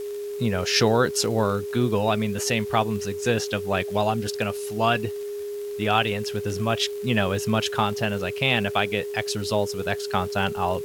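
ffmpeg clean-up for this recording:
ffmpeg -i in.wav -af "adeclick=threshold=4,bandreject=frequency=410:width=30,afwtdn=0.0035" out.wav

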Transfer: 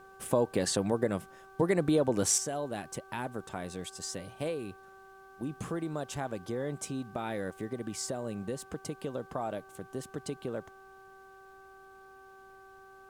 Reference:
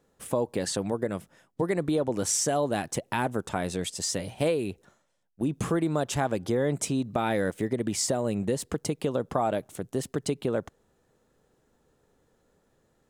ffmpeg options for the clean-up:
ffmpeg -i in.wav -af "bandreject=frequency=385.6:width_type=h:width=4,bandreject=frequency=771.2:width_type=h:width=4,bandreject=frequency=1156.8:width_type=h:width=4,bandreject=frequency=1542.4:width_type=h:width=4,agate=range=-21dB:threshold=-46dB,asetnsamples=nb_out_samples=441:pad=0,asendcmd='2.38 volume volume 9dB',volume=0dB" out.wav

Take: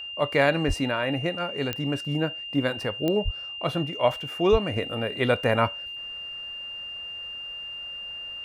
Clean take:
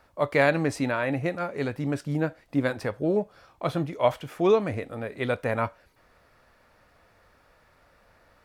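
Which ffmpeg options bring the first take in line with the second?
ffmpeg -i in.wav -filter_complex "[0:a]adeclick=threshold=4,bandreject=frequency=2800:width=30,asplit=3[link_01][link_02][link_03];[link_01]afade=type=out:start_time=0.67:duration=0.02[link_04];[link_02]highpass=frequency=140:width=0.5412,highpass=frequency=140:width=1.3066,afade=type=in:start_time=0.67:duration=0.02,afade=type=out:start_time=0.79:duration=0.02[link_05];[link_03]afade=type=in:start_time=0.79:duration=0.02[link_06];[link_04][link_05][link_06]amix=inputs=3:normalize=0,asplit=3[link_07][link_08][link_09];[link_07]afade=type=out:start_time=3.24:duration=0.02[link_10];[link_08]highpass=frequency=140:width=0.5412,highpass=frequency=140:width=1.3066,afade=type=in:start_time=3.24:duration=0.02,afade=type=out:start_time=3.36:duration=0.02[link_11];[link_09]afade=type=in:start_time=3.36:duration=0.02[link_12];[link_10][link_11][link_12]amix=inputs=3:normalize=0,asplit=3[link_13][link_14][link_15];[link_13]afade=type=out:start_time=4.51:duration=0.02[link_16];[link_14]highpass=frequency=140:width=0.5412,highpass=frequency=140:width=1.3066,afade=type=in:start_time=4.51:duration=0.02,afade=type=out:start_time=4.63:duration=0.02[link_17];[link_15]afade=type=in:start_time=4.63:duration=0.02[link_18];[link_16][link_17][link_18]amix=inputs=3:normalize=0,asetnsamples=nb_out_samples=441:pad=0,asendcmd='4.76 volume volume -4.5dB',volume=0dB" out.wav

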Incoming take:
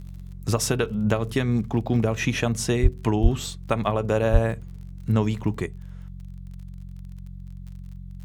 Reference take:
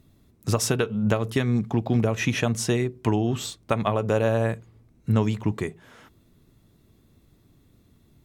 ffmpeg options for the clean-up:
ffmpeg -i in.wav -filter_complex "[0:a]adeclick=threshold=4,bandreject=frequency=45.4:width_type=h:width=4,bandreject=frequency=90.8:width_type=h:width=4,bandreject=frequency=136.2:width_type=h:width=4,bandreject=frequency=181.6:width_type=h:width=4,asplit=3[link_01][link_02][link_03];[link_01]afade=type=out:start_time=2.82:duration=0.02[link_04];[link_02]highpass=frequency=140:width=0.5412,highpass=frequency=140:width=1.3066,afade=type=in:start_time=2.82:duration=0.02,afade=type=out:start_time=2.94:duration=0.02[link_05];[link_03]afade=type=in:start_time=2.94:duration=0.02[link_06];[link_04][link_05][link_06]amix=inputs=3:normalize=0,asplit=3[link_07][link_08][link_09];[link_07]afade=type=out:start_time=3.22:duration=0.02[link_10];[link_08]highpass=frequency=140:width=0.5412,highpass=frequency=140:width=1.3066,afade=type=in:start_time=3.22:duration=0.02,afade=type=out:start_time=3.34:duration=0.02[link_11];[link_09]afade=type=in:start_time=3.34:duration=0.02[link_12];[link_10][link_11][link_12]amix=inputs=3:normalize=0,asplit=3[link_13][link_14][link_15];[link_13]afade=type=out:start_time=4.32:duration=0.02[link_16];[link_14]highpass=frequency=140:width=0.5412,highpass=frequency=140:width=1.3066,afade=type=in:start_time=4.32:duration=0.02,afade=type=out:start_time=4.44:duration=0.02[link_17];[link_15]afade=type=in:start_time=4.44:duration=0.02[link_18];[link_16][link_17][link_18]amix=inputs=3:normalize=0,asetnsamples=nb_out_samples=441:pad=0,asendcmd='5.66 volume volume 10.5dB',volume=0dB" out.wav

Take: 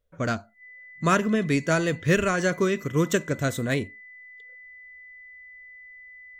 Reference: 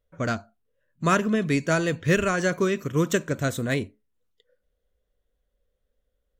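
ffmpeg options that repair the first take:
ffmpeg -i in.wav -af "bandreject=frequency=2000:width=30" out.wav

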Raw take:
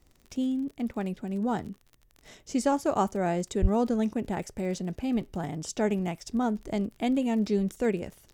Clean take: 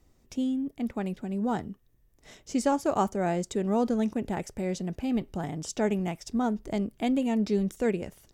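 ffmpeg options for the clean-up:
ffmpeg -i in.wav -filter_complex "[0:a]adeclick=threshold=4,asplit=3[link_01][link_02][link_03];[link_01]afade=type=out:start_time=3.61:duration=0.02[link_04];[link_02]highpass=frequency=140:width=0.5412,highpass=frequency=140:width=1.3066,afade=type=in:start_time=3.61:duration=0.02,afade=type=out:start_time=3.73:duration=0.02[link_05];[link_03]afade=type=in:start_time=3.73:duration=0.02[link_06];[link_04][link_05][link_06]amix=inputs=3:normalize=0" out.wav

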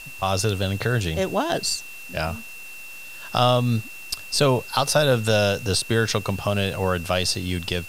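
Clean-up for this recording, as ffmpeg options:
ffmpeg -i in.wav -af "adeclick=threshold=4,bandreject=frequency=2700:width=30,afwtdn=0.0056" out.wav

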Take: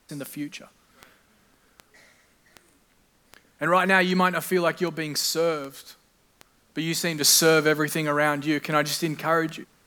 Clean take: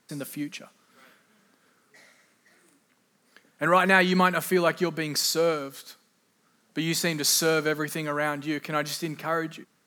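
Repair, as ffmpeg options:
ffmpeg -i in.wav -af "adeclick=threshold=4,agate=range=-21dB:threshold=-55dB,asetnsamples=nb_out_samples=441:pad=0,asendcmd='7.21 volume volume -5dB',volume=0dB" out.wav

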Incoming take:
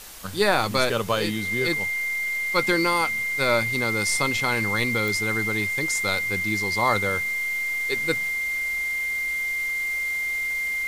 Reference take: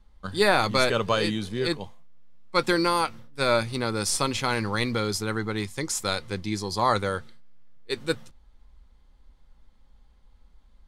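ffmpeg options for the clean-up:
ffmpeg -i in.wav -af "adeclick=threshold=4,bandreject=frequency=2100:width=30,afwtdn=0.0089" out.wav

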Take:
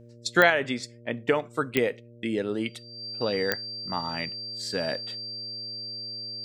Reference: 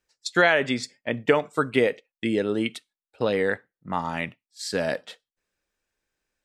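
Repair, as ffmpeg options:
ffmpeg -i in.wav -af "adeclick=threshold=4,bandreject=frequency=118.1:width_type=h:width=4,bandreject=frequency=236.2:width_type=h:width=4,bandreject=frequency=354.3:width_type=h:width=4,bandreject=frequency=472.4:width_type=h:width=4,bandreject=frequency=590.5:width_type=h:width=4,bandreject=frequency=4700:width=30,asetnsamples=nb_out_samples=441:pad=0,asendcmd='0.5 volume volume 4dB',volume=0dB" out.wav

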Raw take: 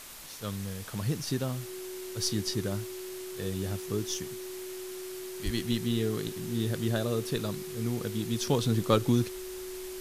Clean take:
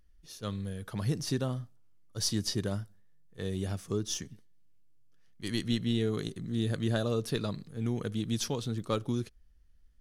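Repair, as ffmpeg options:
ffmpeg -i in.wav -filter_complex "[0:a]bandreject=frequency=370:width=30,asplit=3[link_01][link_02][link_03];[link_01]afade=type=out:start_time=5.44:duration=0.02[link_04];[link_02]highpass=frequency=140:width=0.5412,highpass=frequency=140:width=1.3066,afade=type=in:start_time=5.44:duration=0.02,afade=type=out:start_time=5.56:duration=0.02[link_05];[link_03]afade=type=in:start_time=5.56:duration=0.02[link_06];[link_04][link_05][link_06]amix=inputs=3:normalize=0,afwtdn=0.0056,asetnsamples=nb_out_samples=441:pad=0,asendcmd='8.47 volume volume -7dB',volume=0dB" out.wav

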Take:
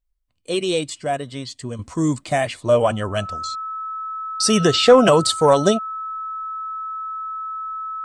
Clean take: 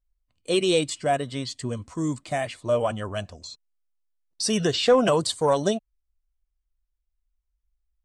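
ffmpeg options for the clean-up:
ffmpeg -i in.wav -af "bandreject=frequency=1300:width=30,asetnsamples=nb_out_samples=441:pad=0,asendcmd='1.79 volume volume -7dB',volume=0dB" out.wav

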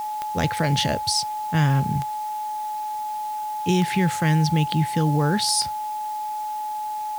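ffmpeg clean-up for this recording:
ffmpeg -i in.wav -af "adeclick=threshold=4,bandreject=frequency=850:width=30,afwtdn=0.005" out.wav

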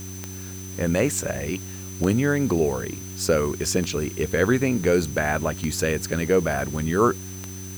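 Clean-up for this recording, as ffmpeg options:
ffmpeg -i in.wav -af "adeclick=threshold=4,bandreject=frequency=93.9:width_type=h:width=4,bandreject=frequency=187.8:width_type=h:width=4,bandreject=frequency=281.7:width_type=h:width=4,bandreject=frequency=375.6:width_type=h:width=4,bandreject=frequency=6100:width=30,afwtdn=0.0056" out.wav

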